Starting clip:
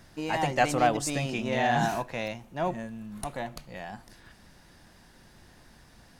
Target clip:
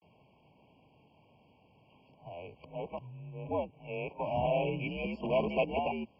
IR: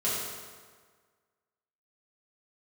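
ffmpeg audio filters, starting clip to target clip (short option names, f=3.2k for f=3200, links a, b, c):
-filter_complex "[0:a]areverse,acrossover=split=310|570|1900[a][b][c][d];[b]aeval=exprs='(mod(23.7*val(0)+1,2)-1)/23.7':c=same[e];[a][e][c][d]amix=inputs=4:normalize=0,highpass=f=200:t=q:w=0.5412,highpass=f=200:t=q:w=1.307,lowpass=f=3.3k:t=q:w=0.5176,lowpass=f=3.3k:t=q:w=0.7071,lowpass=f=3.3k:t=q:w=1.932,afreqshift=-83,afftfilt=real='re*eq(mod(floor(b*sr/1024/1100),2),0)':imag='im*eq(mod(floor(b*sr/1024/1100),2),0)':win_size=1024:overlap=0.75,volume=-3.5dB"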